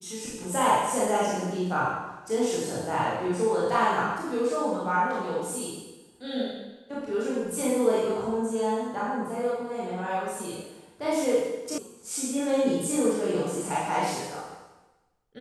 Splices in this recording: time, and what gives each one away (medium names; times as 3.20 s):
11.78 s: sound stops dead